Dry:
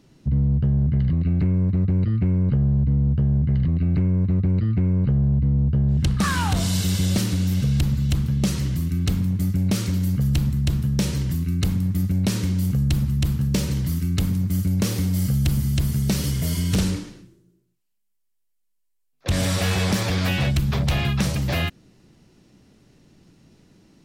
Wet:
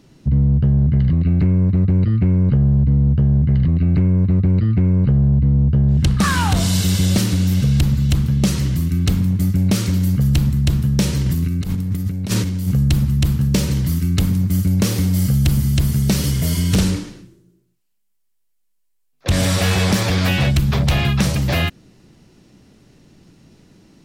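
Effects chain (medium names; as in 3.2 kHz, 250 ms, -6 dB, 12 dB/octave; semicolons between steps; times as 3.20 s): 11.26–12.68 s: compressor with a negative ratio -24 dBFS, ratio -0.5; trim +5 dB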